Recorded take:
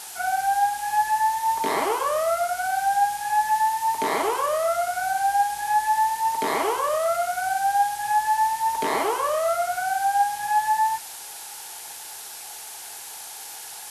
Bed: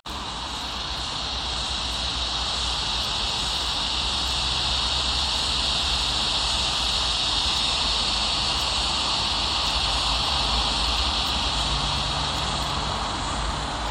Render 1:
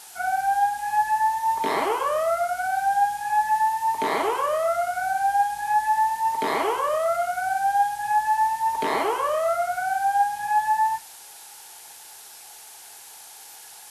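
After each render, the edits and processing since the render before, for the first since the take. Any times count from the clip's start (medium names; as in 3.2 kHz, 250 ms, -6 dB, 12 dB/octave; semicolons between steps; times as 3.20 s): noise print and reduce 6 dB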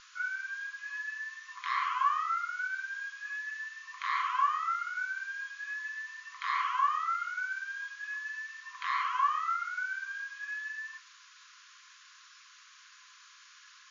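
FFT band-pass 1–7.1 kHz; tilt EQ -4 dB/octave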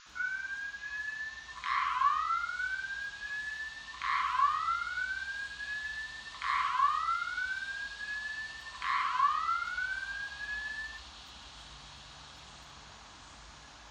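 add bed -27 dB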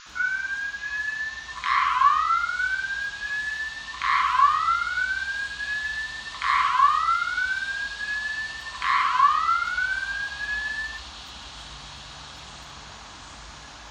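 trim +9.5 dB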